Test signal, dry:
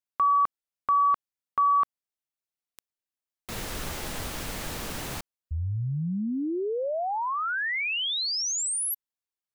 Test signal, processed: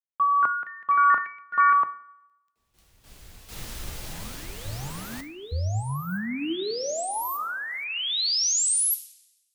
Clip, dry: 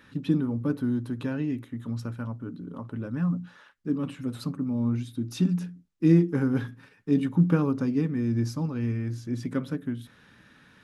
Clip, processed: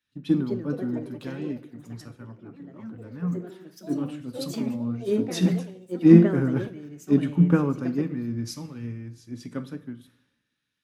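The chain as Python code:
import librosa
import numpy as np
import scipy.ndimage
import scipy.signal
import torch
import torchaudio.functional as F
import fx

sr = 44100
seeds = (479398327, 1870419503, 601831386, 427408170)

y = fx.rev_double_slope(x, sr, seeds[0], early_s=0.57, late_s=3.6, knee_db=-17, drr_db=10.0)
y = fx.echo_pitch(y, sr, ms=271, semitones=4, count=3, db_per_echo=-6.0)
y = fx.band_widen(y, sr, depth_pct=100)
y = F.gain(torch.from_numpy(y), -2.0).numpy()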